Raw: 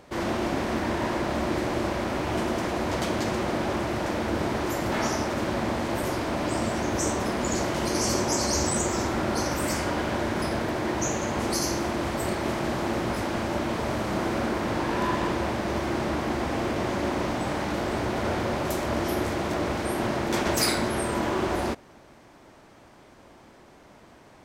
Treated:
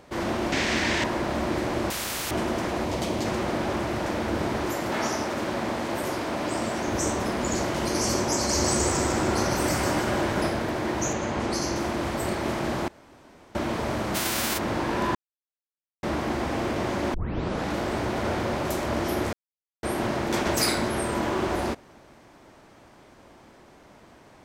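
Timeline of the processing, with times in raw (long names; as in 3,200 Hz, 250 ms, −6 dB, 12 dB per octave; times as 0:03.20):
0:00.52–0:01.04: flat-topped bell 3,700 Hz +11.5 dB 2.5 octaves
0:01.90–0:02.31: every bin compressed towards the loudest bin 4 to 1
0:02.85–0:03.25: parametric band 1,500 Hz −7 dB
0:04.72–0:06.88: low-shelf EQ 110 Hz −10.5 dB
0:08.34–0:10.51: echo with a time of its own for lows and highs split 1,300 Hz, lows 240 ms, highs 152 ms, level −3.5 dB
0:11.13–0:11.76: high-frequency loss of the air 53 metres
0:12.88–0:13.55: fill with room tone
0:14.14–0:14.57: spectral envelope flattened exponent 0.3
0:15.15–0:16.03: silence
0:17.14: tape start 0.56 s
0:19.33–0:19.83: silence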